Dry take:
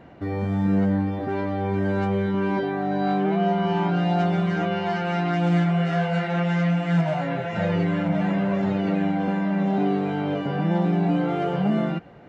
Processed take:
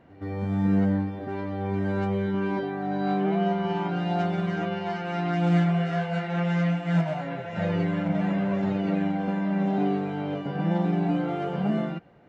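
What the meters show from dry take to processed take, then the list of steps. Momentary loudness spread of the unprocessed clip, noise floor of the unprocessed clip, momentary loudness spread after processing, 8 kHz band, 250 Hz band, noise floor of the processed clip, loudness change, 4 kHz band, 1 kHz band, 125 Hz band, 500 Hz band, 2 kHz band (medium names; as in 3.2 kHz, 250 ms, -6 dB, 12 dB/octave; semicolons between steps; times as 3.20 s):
4 LU, -29 dBFS, 7 LU, no reading, -3.0 dB, -36 dBFS, -3.0 dB, -4.0 dB, -4.0 dB, -3.0 dB, -3.5 dB, -4.0 dB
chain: reverse echo 123 ms -14.5 dB; upward expansion 1.5:1, over -31 dBFS; trim -1.5 dB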